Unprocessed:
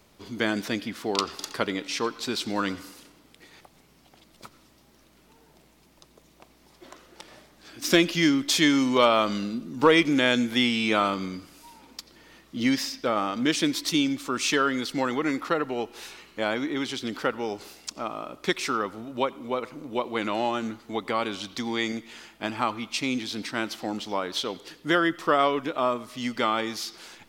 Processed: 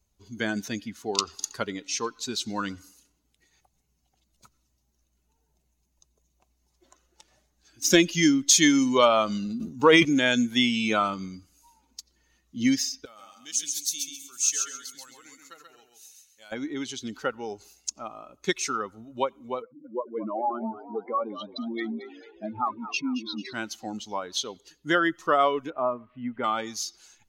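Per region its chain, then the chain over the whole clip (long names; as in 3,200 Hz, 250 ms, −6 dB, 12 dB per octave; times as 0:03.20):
0:09.46–0:10.05: high-pass filter 45 Hz + transient designer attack −1 dB, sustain +11 dB
0:13.05–0:16.52: first-order pre-emphasis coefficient 0.9 + repeating echo 134 ms, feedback 37%, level −3 dB
0:19.62–0:23.53: expanding power law on the bin magnitudes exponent 2.6 + echo with shifted repeats 222 ms, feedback 60%, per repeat +57 Hz, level −9 dB
0:25.70–0:26.44: spike at every zero crossing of −27 dBFS + Bessel low-pass filter 1,600 Hz, order 6
whole clip: spectral dynamics exaggerated over time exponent 1.5; parametric band 6,500 Hz +14.5 dB 0.23 octaves; level +2.5 dB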